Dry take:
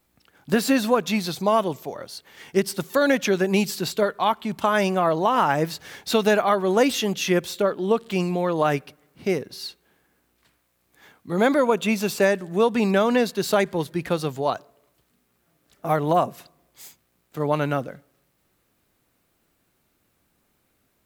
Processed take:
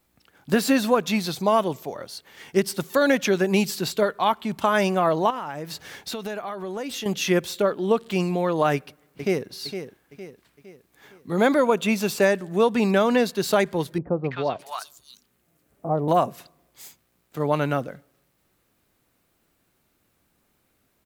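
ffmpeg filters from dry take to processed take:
ffmpeg -i in.wav -filter_complex "[0:a]asettb=1/sr,asplit=3[link_01][link_02][link_03];[link_01]atrim=end=5.304[link_04];[link_02]atrim=start=5.3:end=7.06,asetpts=PTS-STARTPTS,afade=type=in:duration=0.004:curve=qsin,afade=type=out:start_time=1.756:duration=0.004:curve=qsin,acompressor=threshold=-29dB:ratio=5:attack=3.2:release=140:knee=1:detection=peak[link_05];[link_03]atrim=start=7.056[link_06];[link_04][link_05]acrossfade=duration=0.004:curve1=hsin:curve2=qsin[link_07];[link_07][link_06]acrossfade=duration=0.004:curve1=qsin:curve2=hsin,asplit=2[link_08][link_09];[link_09]afade=type=in:start_time=8.73:duration=0.01,afade=type=out:start_time=9.5:duration=0.01,aecho=0:1:460|920|1380|1840|2300:0.334965|0.150734|0.0678305|0.0305237|0.0137357[link_10];[link_08][link_10]amix=inputs=2:normalize=0,asettb=1/sr,asplit=3[link_11][link_12][link_13];[link_11]atrim=end=13.984[link_14];[link_12]atrim=start=13.98:end=16.08,asetpts=PTS-STARTPTS,afade=type=in:duration=0.004:curve=qsin,afade=type=out:start_time=2.096:duration=0.004:curve=qsin,acrossover=split=970|4200[link_15][link_16][link_17];[link_16]adelay=260[link_18];[link_17]adelay=610[link_19];[link_15][link_18][link_19]amix=inputs=3:normalize=0,atrim=end_sample=92610[link_20];[link_13]atrim=start=16.076[link_21];[link_14][link_20]acrossfade=duration=0.004:curve1=hsin:curve2=qsin[link_22];[link_22][link_21]acrossfade=duration=0.004:curve1=qsin:curve2=hsin" out.wav

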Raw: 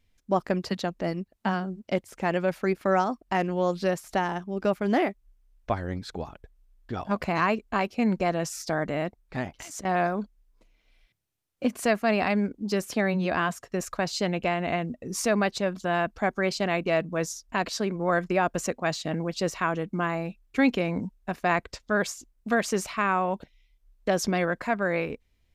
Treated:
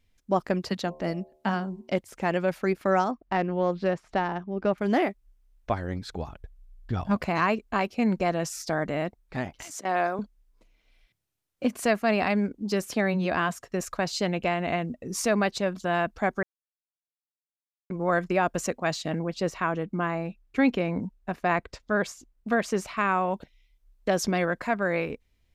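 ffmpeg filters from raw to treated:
ffmpeg -i in.wav -filter_complex "[0:a]asettb=1/sr,asplit=3[link_01][link_02][link_03];[link_01]atrim=end=0.834[link_04];[link_02]atrim=start=0.83:end=1.94,asetpts=PTS-STARTPTS,afade=type=in:duration=0.004:curve=qsin,afade=type=out:start_time=1.106:duration=0.004:curve=qsin,bandreject=frequency=75.56:width_type=h:width=4,bandreject=frequency=151.12:width_type=h:width=4,bandreject=frequency=226.68:width_type=h:width=4,bandreject=frequency=302.24:width_type=h:width=4,bandreject=frequency=377.8:width_type=h:width=4,bandreject=frequency=453.36:width_type=h:width=4,bandreject=frequency=528.92:width_type=h:width=4,bandreject=frequency=604.48:width_type=h:width=4,bandreject=frequency=680.04:width_type=h:width=4,bandreject=frequency=755.6:width_type=h:width=4,bandreject=frequency=831.16:width_type=h:width=4,bandreject=frequency=906.72:width_type=h:width=4,bandreject=frequency=982.28:width_type=h:width=4,bandreject=frequency=1057.84:width_type=h:width=4[link_05];[link_03]atrim=start=1.936[link_06];[link_04][link_05]acrossfade=duration=0.004:curve1=hsin:curve2=qsin[link_07];[link_07][link_06]acrossfade=duration=0.004:curve1=qsin:curve2=hsin,asettb=1/sr,asplit=3[link_08][link_09][link_10];[link_08]atrim=end=3.114[link_11];[link_09]atrim=start=3.11:end=4.78,asetpts=PTS-STARTPTS,afade=type=in:duration=0.004:curve=qsin,afade=type=out:start_time=1.666:duration=0.004:curve=qsin,adynamicsmooth=sensitivity=1:basefreq=2900[link_12];[link_10]atrim=start=4.776[link_13];[link_11][link_12]acrossfade=duration=0.004:curve1=hsin:curve2=qsin[link_14];[link_14][link_13]acrossfade=duration=0.004:curve1=qsin:curve2=hsin,asettb=1/sr,asplit=3[link_15][link_16][link_17];[link_15]atrim=end=5.904[link_18];[link_16]atrim=start=5.9:end=7.17,asetpts=PTS-STARTPTS,afade=type=in:duration=0.004:curve=qsin,afade=type=out:start_time=1.266:duration=0.004:curve=qsin,asubboost=boost=8:cutoff=190[link_19];[link_17]atrim=start=7.166[link_20];[link_18][link_19]acrossfade=duration=0.004:curve1=hsin:curve2=qsin[link_21];[link_21][link_20]acrossfade=duration=0.004:curve1=qsin:curve2=hsin,asettb=1/sr,asplit=3[link_22][link_23][link_24];[link_22]atrim=end=9.754[link_25];[link_23]atrim=start=9.75:end=10.19,asetpts=PTS-STARTPTS,afade=type=in:duration=0.004:curve=qsin,afade=type=out:start_time=0.436:duration=0.004:curve=qsin,highpass=300[link_26];[link_24]atrim=start=10.186[link_27];[link_25][link_26]acrossfade=duration=0.004:curve1=hsin:curve2=qsin[link_28];[link_28][link_27]acrossfade=duration=0.004:curve1=qsin:curve2=hsin,asettb=1/sr,asplit=3[link_29][link_30][link_31];[link_29]atrim=end=19.194[link_32];[link_30]atrim=start=19.19:end=22.97,asetpts=PTS-STARTPTS,afade=type=in:duration=0.004:curve=qsin,afade=type=out:start_time=3.776:duration=0.004:curve=qsin,highshelf=frequency=3600:gain=-7.5[link_33];[link_31]atrim=start=22.966[link_34];[link_32][link_33]acrossfade=duration=0.004:curve1=hsin:curve2=qsin[link_35];[link_35][link_34]acrossfade=duration=0.004:curve1=qsin:curve2=hsin,asplit=3[link_36][link_37][link_38];[link_36]atrim=end=16.43,asetpts=PTS-STARTPTS,afade=type=out:start_time=16.426:duration=0.004:curve=hsin[link_39];[link_37]atrim=start=16.43:end=17.9,asetpts=PTS-STARTPTS,volume=0[link_40];[link_38]atrim=start=17.9,asetpts=PTS-STARTPTS,afade=type=in:duration=0.004:curve=hsin[link_41];[link_39][link_40][link_41]concat=n=3:v=0:a=1" out.wav

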